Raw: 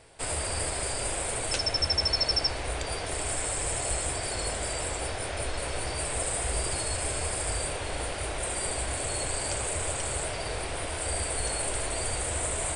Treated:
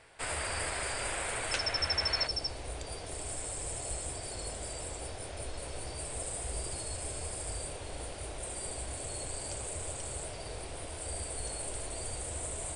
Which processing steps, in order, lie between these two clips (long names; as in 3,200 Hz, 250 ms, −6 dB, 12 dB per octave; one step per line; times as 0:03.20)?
parametric band 1,700 Hz +9 dB 2 octaves, from 0:02.27 −6.5 dB
level −7 dB